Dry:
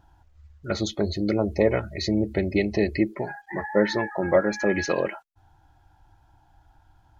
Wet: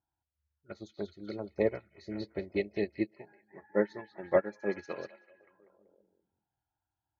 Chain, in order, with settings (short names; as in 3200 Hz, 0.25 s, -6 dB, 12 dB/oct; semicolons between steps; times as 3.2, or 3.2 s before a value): HPF 87 Hz; bell 400 Hz +3.5 dB 0.4 oct; on a send: delay with a stepping band-pass 0.191 s, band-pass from 3300 Hz, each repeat -0.7 oct, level -2.5 dB; on the sum: upward expander 2.5:1, over -30 dBFS; gain -5 dB